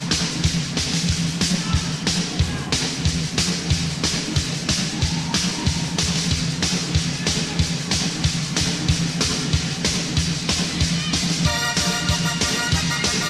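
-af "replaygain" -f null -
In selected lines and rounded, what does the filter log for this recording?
track_gain = +2.4 dB
track_peak = 0.370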